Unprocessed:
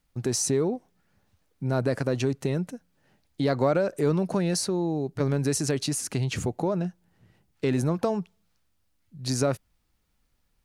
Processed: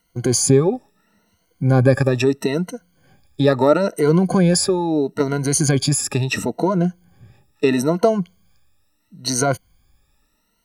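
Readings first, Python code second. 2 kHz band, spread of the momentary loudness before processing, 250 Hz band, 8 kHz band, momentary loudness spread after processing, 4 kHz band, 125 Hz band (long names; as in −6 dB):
+10.0 dB, 9 LU, +8.5 dB, +9.0 dB, 9 LU, +8.5 dB, +8.5 dB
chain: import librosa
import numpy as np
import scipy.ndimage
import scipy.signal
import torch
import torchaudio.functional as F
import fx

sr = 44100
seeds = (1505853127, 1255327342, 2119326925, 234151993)

y = fx.spec_ripple(x, sr, per_octave=1.9, drift_hz=0.75, depth_db=20)
y = F.gain(torch.from_numpy(y), 5.5).numpy()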